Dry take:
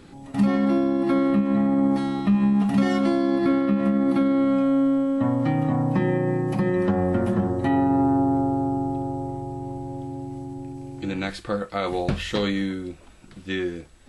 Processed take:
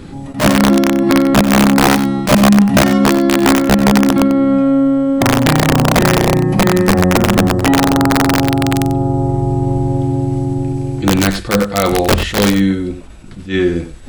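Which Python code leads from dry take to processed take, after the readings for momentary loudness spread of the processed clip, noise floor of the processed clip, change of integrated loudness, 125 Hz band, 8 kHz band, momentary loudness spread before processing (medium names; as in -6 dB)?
6 LU, -30 dBFS, +10.0 dB, +12.5 dB, no reading, 13 LU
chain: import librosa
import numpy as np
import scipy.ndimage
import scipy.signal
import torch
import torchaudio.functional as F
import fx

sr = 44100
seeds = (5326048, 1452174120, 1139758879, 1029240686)

p1 = fx.low_shelf(x, sr, hz=250.0, db=7.5)
p2 = fx.rider(p1, sr, range_db=10, speed_s=0.5)
p3 = p1 + (p2 * librosa.db_to_amplitude(2.5))
p4 = (np.mod(10.0 ** (3.5 / 20.0) * p3 + 1.0, 2.0) - 1.0) / 10.0 ** (3.5 / 20.0)
p5 = p4 + fx.echo_single(p4, sr, ms=93, db=-11.5, dry=0)
y = fx.attack_slew(p5, sr, db_per_s=180.0)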